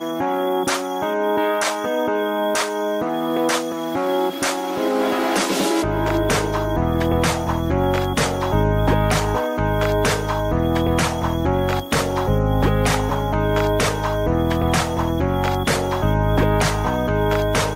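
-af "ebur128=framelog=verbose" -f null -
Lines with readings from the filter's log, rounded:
Integrated loudness:
  I:         -20.2 LUFS
  Threshold: -30.1 LUFS
Loudness range:
  LRA:         1.5 LU
  Threshold: -40.1 LUFS
  LRA low:   -21.1 LUFS
  LRA high:  -19.7 LUFS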